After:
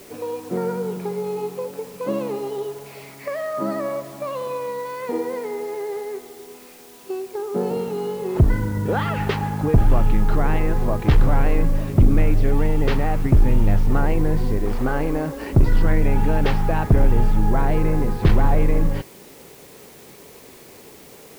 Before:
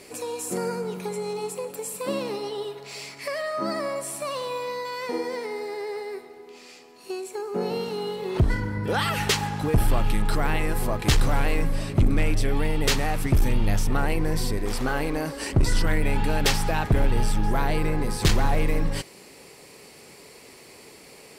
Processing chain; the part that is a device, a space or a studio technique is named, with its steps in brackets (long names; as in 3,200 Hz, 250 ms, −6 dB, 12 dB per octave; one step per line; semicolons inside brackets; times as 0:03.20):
cassette deck with a dirty head (head-to-tape spacing loss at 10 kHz 43 dB; tape wow and flutter 20 cents; white noise bed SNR 30 dB)
level +6 dB